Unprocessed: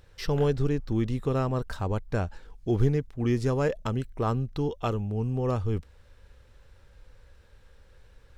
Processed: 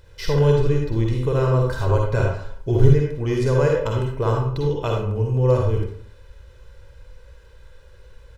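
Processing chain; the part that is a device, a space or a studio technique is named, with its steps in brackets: microphone above a desk (comb 2 ms, depth 58%; reverberation RT60 0.55 s, pre-delay 44 ms, DRR -0.5 dB); 1.79–2.93 s: comb 7.4 ms, depth 68%; trim +2.5 dB

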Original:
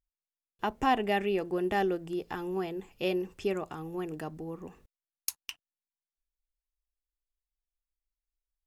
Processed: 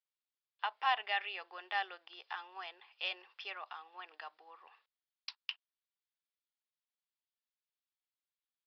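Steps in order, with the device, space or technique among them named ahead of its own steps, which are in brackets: musical greeting card (resampled via 11.025 kHz; high-pass 880 Hz 24 dB/octave; peaking EQ 3.4 kHz +4.5 dB 0.51 oct); trim -1.5 dB

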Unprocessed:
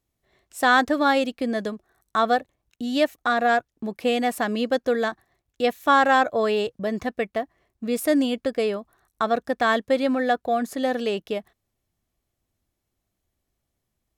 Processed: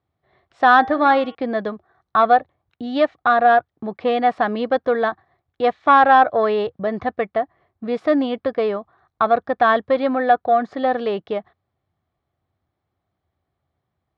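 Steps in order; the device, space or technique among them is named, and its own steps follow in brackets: 0.79–1.35 s: de-hum 158.1 Hz, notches 23; guitar amplifier (valve stage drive 9 dB, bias 0.25; tone controls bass -2 dB, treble -8 dB; cabinet simulation 81–4200 Hz, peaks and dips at 85 Hz +10 dB, 140 Hz +6 dB, 240 Hz -3 dB, 760 Hz +6 dB, 1.2 kHz +5 dB, 2.7 kHz -7 dB); trim +4 dB

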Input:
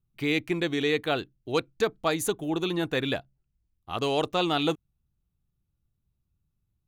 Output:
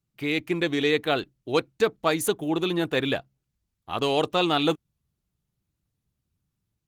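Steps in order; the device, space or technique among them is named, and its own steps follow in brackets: video call (high-pass 110 Hz 6 dB/octave; level rider gain up to 3.5 dB; Opus 20 kbps 48 kHz)

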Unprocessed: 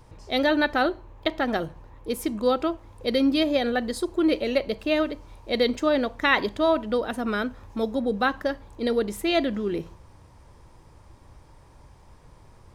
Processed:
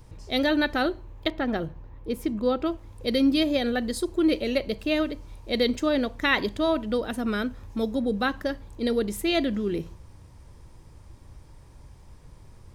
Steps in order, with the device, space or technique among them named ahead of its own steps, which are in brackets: smiley-face EQ (bass shelf 200 Hz +4 dB; peaking EQ 890 Hz -5 dB 1.8 oct; treble shelf 7.8 kHz +4 dB); 1.30–2.66 s: peaking EQ 10 kHz -12.5 dB 2.1 oct

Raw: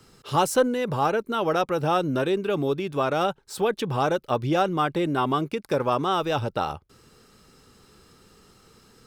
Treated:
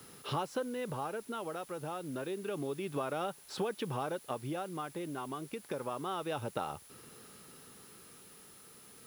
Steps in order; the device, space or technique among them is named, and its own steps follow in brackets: medium wave at night (band-pass 120–4200 Hz; compression 5:1, threshold -33 dBFS, peak gain reduction 16 dB; tremolo 0.29 Hz, depth 46%; whistle 10 kHz -58 dBFS; white noise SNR 20 dB)

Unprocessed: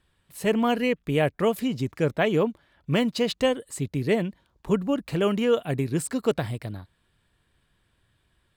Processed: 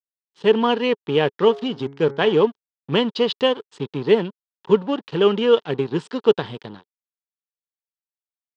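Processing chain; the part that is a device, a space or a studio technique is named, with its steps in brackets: blown loudspeaker (crossover distortion -39 dBFS; cabinet simulation 180–4800 Hz, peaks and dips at 270 Hz -3 dB, 420 Hz +7 dB, 640 Hz -8 dB, 930 Hz +6 dB, 2.2 kHz -7 dB, 3.2 kHz +7 dB); 1.36–2.34 s: de-hum 138.8 Hz, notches 16; trim +5 dB

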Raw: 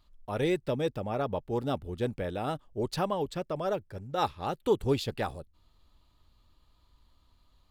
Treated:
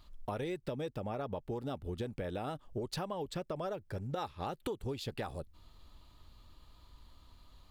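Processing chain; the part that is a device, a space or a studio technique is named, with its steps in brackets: serial compression, leveller first (compression 2:1, threshold -35 dBFS, peak gain reduction 8.5 dB; compression, threshold -42 dBFS, peak gain reduction 13.5 dB); trim +6.5 dB

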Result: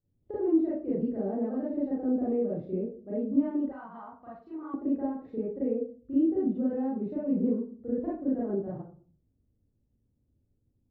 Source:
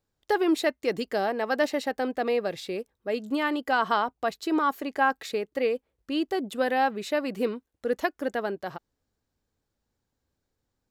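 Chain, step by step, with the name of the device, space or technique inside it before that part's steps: television next door (compression 4:1, threshold -26 dBFS, peak gain reduction 8 dB; low-pass 300 Hz 12 dB/octave; reverberation RT60 0.45 s, pre-delay 31 ms, DRR -9 dB); 3.72–4.74 s: resonant low shelf 700 Hz -13.5 dB, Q 1.5; trim -3 dB

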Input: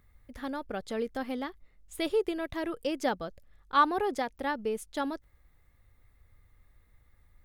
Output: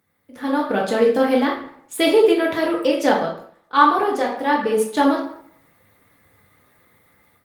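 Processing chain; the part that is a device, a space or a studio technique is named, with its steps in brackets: far-field microphone of a smart speaker (reverberation RT60 0.65 s, pre-delay 3 ms, DRR -2.5 dB; high-pass 140 Hz 24 dB/octave; level rider gain up to 13 dB; Opus 24 kbps 48 kHz)

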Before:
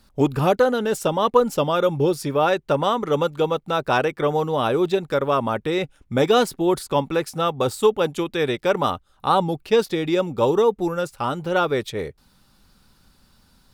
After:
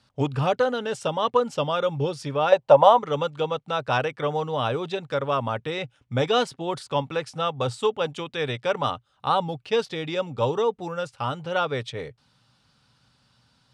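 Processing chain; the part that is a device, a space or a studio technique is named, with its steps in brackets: 2.52–2.99 s: high-order bell 720 Hz +12.5 dB 1.2 oct; car door speaker (cabinet simulation 110–8100 Hz, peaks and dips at 120 Hz +9 dB, 200 Hz -7 dB, 350 Hz -10 dB, 3 kHz +4 dB, 7.1 kHz -4 dB); trim -3.5 dB

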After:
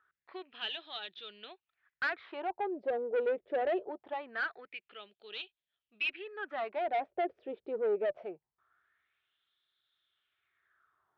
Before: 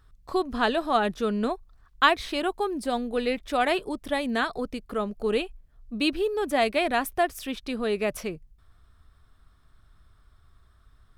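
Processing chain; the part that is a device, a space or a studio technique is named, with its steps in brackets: wah-wah guitar rig (wah-wah 0.23 Hz 470–3700 Hz, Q 4.3; valve stage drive 31 dB, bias 0.25; cabinet simulation 91–3500 Hz, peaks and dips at 240 Hz -6 dB, 360 Hz +7 dB, 1.1 kHz -8 dB); trim +4 dB

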